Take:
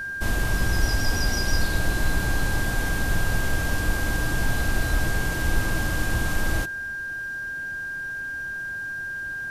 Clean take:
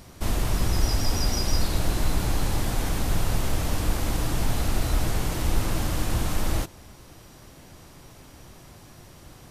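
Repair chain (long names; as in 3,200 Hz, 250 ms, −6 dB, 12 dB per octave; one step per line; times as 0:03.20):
notch filter 1,600 Hz, Q 30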